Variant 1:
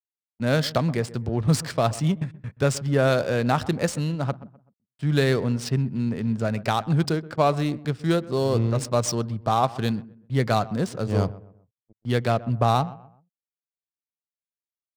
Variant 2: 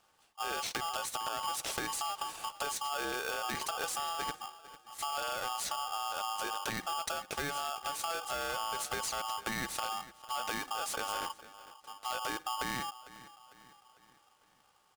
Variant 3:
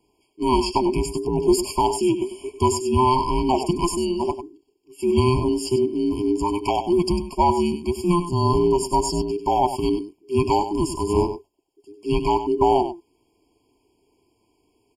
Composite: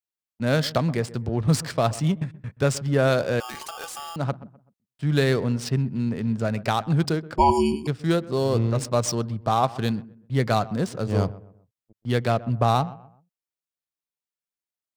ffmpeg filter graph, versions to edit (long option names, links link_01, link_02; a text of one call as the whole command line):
ffmpeg -i take0.wav -i take1.wav -i take2.wav -filter_complex "[0:a]asplit=3[link_01][link_02][link_03];[link_01]atrim=end=3.402[link_04];[1:a]atrim=start=3.398:end=4.162[link_05];[link_02]atrim=start=4.158:end=7.382[link_06];[2:a]atrim=start=7.378:end=7.872[link_07];[link_03]atrim=start=7.868[link_08];[link_04][link_05]acrossfade=duration=0.004:curve1=hsin:curve2=hsin[link_09];[link_09][link_06]acrossfade=duration=0.004:curve1=hsin:curve2=hsin[link_10];[link_10][link_07]acrossfade=duration=0.004:curve1=hsin:curve2=hsin[link_11];[link_11][link_08]acrossfade=duration=0.004:curve1=hsin:curve2=hsin" out.wav